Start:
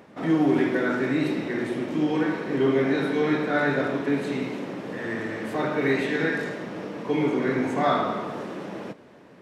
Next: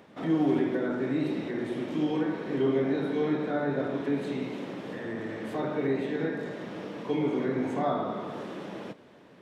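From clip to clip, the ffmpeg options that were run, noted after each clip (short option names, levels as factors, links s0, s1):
-filter_complex "[0:a]equalizer=f=3400:w=2.7:g=5,acrossover=split=1000[s0][s1];[s1]acompressor=threshold=0.01:ratio=6[s2];[s0][s2]amix=inputs=2:normalize=0,volume=0.631"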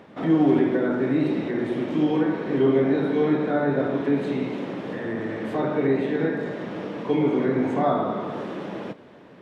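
-af "highshelf=f=4700:g=-10,volume=2.11"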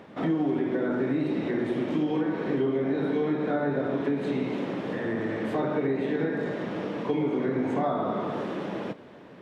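-af "acompressor=threshold=0.0708:ratio=6"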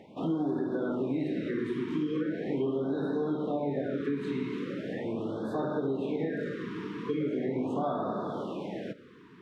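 -af "afftfilt=real='re*(1-between(b*sr/1024,630*pow(2500/630,0.5+0.5*sin(2*PI*0.4*pts/sr))/1.41,630*pow(2500/630,0.5+0.5*sin(2*PI*0.4*pts/sr))*1.41))':imag='im*(1-between(b*sr/1024,630*pow(2500/630,0.5+0.5*sin(2*PI*0.4*pts/sr))/1.41,630*pow(2500/630,0.5+0.5*sin(2*PI*0.4*pts/sr))*1.41))':win_size=1024:overlap=0.75,volume=0.631"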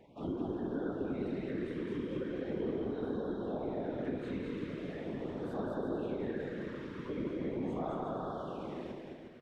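-af "afftfilt=real='hypot(re,im)*cos(2*PI*random(0))':imag='hypot(re,im)*sin(2*PI*random(1))':win_size=512:overlap=0.75,aecho=1:1:210|357|459.9|531.9|582.4:0.631|0.398|0.251|0.158|0.1,volume=0.794"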